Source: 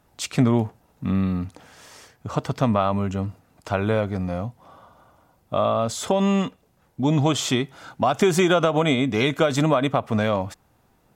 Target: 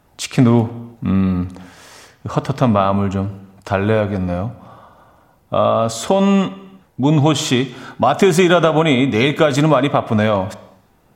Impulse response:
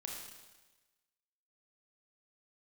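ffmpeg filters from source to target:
-filter_complex "[0:a]asplit=2[a][b];[1:a]atrim=start_sample=2205,afade=t=out:st=0.43:d=0.01,atrim=end_sample=19404,lowpass=4.4k[c];[b][c]afir=irnorm=-1:irlink=0,volume=-8dB[d];[a][d]amix=inputs=2:normalize=0,volume=4.5dB"

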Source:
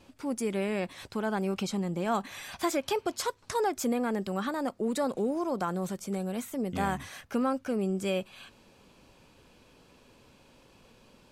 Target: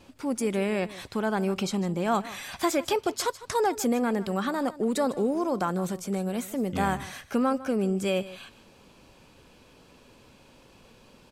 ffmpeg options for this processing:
-af "aecho=1:1:153:0.141,volume=3.5dB"

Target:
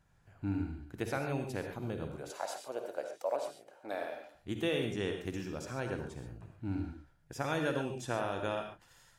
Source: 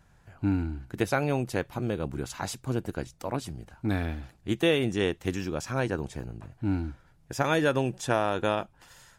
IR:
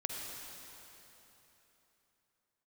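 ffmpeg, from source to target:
-filter_complex "[0:a]asettb=1/sr,asplit=3[a][b][c];[a]atrim=end=2.164[d];[b]atrim=start=2.16:end=4.34,asetpts=PTS-STARTPTS,afade=t=in:d=0.004:c=qsin,afade=t=out:st=2.176:d=0.004:c=qsin,highpass=f=580:t=q:w=4.9[e];[c]atrim=start=4.336[f];[d][e]acrossfade=d=0.004:c1=hsin:c2=qsin[g];[g][f]acrossfade=d=0.004:c1=qsin:c2=hsin[h];[1:a]atrim=start_sample=2205,atrim=end_sample=6615[i];[h][i]afir=irnorm=-1:irlink=0,volume=-8.5dB"

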